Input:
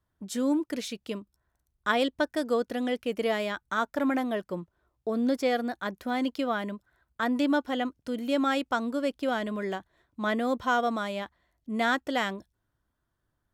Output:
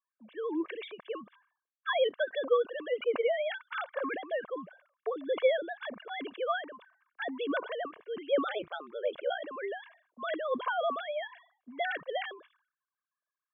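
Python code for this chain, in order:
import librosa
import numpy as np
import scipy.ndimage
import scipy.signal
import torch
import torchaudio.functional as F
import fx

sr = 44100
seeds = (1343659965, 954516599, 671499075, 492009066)

y = fx.sine_speech(x, sr)
y = fx.highpass(y, sr, hz=500.0, slope=6)
y = y + 0.6 * np.pad(y, (int(1.8 * sr / 1000.0), 0))[:len(y)]
y = fx.ring_mod(y, sr, carrier_hz=fx.line((8.46, 130.0), (9.44, 26.0)), at=(8.46, 9.44), fade=0.02)
y = fx.env_lowpass(y, sr, base_hz=1600.0, full_db=-29.0)
y = fx.sustainer(y, sr, db_per_s=120.0)
y = y * 10.0 ** (-2.5 / 20.0)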